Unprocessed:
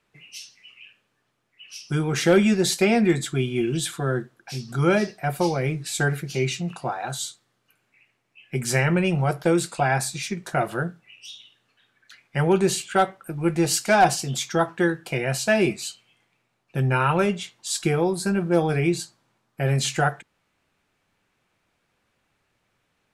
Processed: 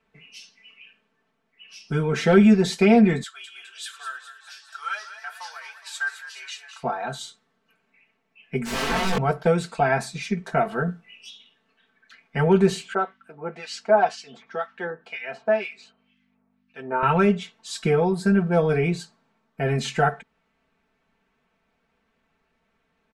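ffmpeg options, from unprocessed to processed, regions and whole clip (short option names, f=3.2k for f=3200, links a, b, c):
-filter_complex "[0:a]asettb=1/sr,asplit=3[a][b][c];[a]atrim=end=3.234[d];[b]atrim=start=3.23:end=6.83,asetpts=PTS-STARTPTS,afade=t=in:d=0.004:c=qsin,afade=t=out:st=3.596:d=0.004:c=qsin,highpass=f=1.3k:w=0.5412,highpass=f=1.3k:w=1.3066,equalizer=f=2.2k:t=o:w=0.39:g=-10,asplit=9[e][f][g][h][i][j][k][l][m];[f]adelay=207,afreqshift=44,volume=-11dB[n];[g]adelay=414,afreqshift=88,volume=-14.7dB[o];[h]adelay=621,afreqshift=132,volume=-18.5dB[p];[i]adelay=828,afreqshift=176,volume=-22.2dB[q];[j]adelay=1035,afreqshift=220,volume=-26dB[r];[k]adelay=1242,afreqshift=264,volume=-29.7dB[s];[l]adelay=1449,afreqshift=308,volume=-33.5dB[t];[m]adelay=1656,afreqshift=352,volume=-37.2dB[u];[e][n][o][p][q][r][s][t][u]amix=inputs=9:normalize=0,atrim=end_sample=158760[v];[c]atrim=start=6.826[w];[d][v]acrossfade=d=0.004:c1=hsin:c2=qsin[x];[x][w]acrossfade=d=0.004:c1=qsin:c2=hsin,asettb=1/sr,asplit=3[y][z][aa];[y]atrim=end=8.654[ab];[z]atrim=start=8.65:end=9.18,asetpts=PTS-STARTPTS,afade=t=in:d=0.004:c=qsin,afade=t=out:st=0.526:d=0.004:c=qsin,equalizer=f=330:t=o:w=0.21:g=-9,aeval=exprs='(mod(11.9*val(0)+1,2)-1)/11.9':c=same,asplit=2[ac][ad];[ad]adelay=21,volume=-3dB[ae];[ac][ae]amix=inputs=2:normalize=0,atrim=end_sample=23373[af];[aa]atrim=start=9.176[ag];[ab][af]acrossfade=d=0.004:c1=hsin:c2=qsin[ah];[ah][ag]acrossfade=d=0.004:c1=qsin:c2=hsin,asettb=1/sr,asplit=3[ai][aj][ak];[ai]atrim=end=10.864[al];[aj]atrim=start=10.86:end=11.3,asetpts=PTS-STARTPTS,afade=t=in:d=0.004:c=qsin,afade=t=out:st=0.436:d=0.004:c=qsin,highshelf=f=8.2k:g=8.5,asplit=2[am][an];[an]adelay=17,volume=-4dB[ao];[am][ao]amix=inputs=2:normalize=0,atrim=end_sample=19404[ap];[ak]atrim=start=11.296[aq];[al][ap]acrossfade=d=0.004:c1=hsin:c2=qsin[ar];[ar][aq]acrossfade=d=0.004:c1=qsin:c2=hsin,asettb=1/sr,asplit=3[as][at][au];[as]atrim=end=12.944[av];[at]atrim=start=12.94:end=17.03,asetpts=PTS-STARTPTS,afade=t=in:d=0.004:c=qsin,afade=t=out:st=4.086:d=0.004:c=qsin,acrossover=split=1500[aw][ax];[aw]aeval=exprs='val(0)*(1-1/2+1/2*cos(2*PI*2*n/s))':c=same[ay];[ax]aeval=exprs='val(0)*(1-1/2-1/2*cos(2*PI*2*n/s))':c=same[az];[ay][az]amix=inputs=2:normalize=0,aeval=exprs='val(0)+0.00282*(sin(2*PI*50*n/s)+sin(2*PI*2*50*n/s)/2+sin(2*PI*3*50*n/s)/3+sin(2*PI*4*50*n/s)/4+sin(2*PI*5*50*n/s)/5)':c=same,highpass=390,lowpass=5k[ba];[au]atrim=start=17.026[bb];[av][ba]acrossfade=d=0.004:c1=hsin:c2=qsin[bc];[bc][bb]acrossfade=d=0.004:c1=qsin:c2=hsin,aemphasis=mode=reproduction:type=75fm,aecho=1:1:4.5:0.91,volume=-1dB"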